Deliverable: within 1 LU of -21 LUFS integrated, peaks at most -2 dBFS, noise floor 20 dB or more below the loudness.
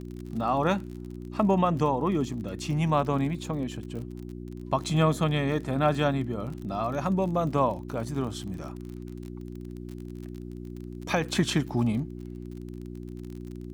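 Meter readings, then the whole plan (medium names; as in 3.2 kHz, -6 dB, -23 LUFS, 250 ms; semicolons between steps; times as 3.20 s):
tick rate 39 per s; hum 60 Hz; highest harmonic 360 Hz; hum level -36 dBFS; loudness -28.0 LUFS; peak level -10.5 dBFS; loudness target -21.0 LUFS
-> de-click; de-hum 60 Hz, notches 6; trim +7 dB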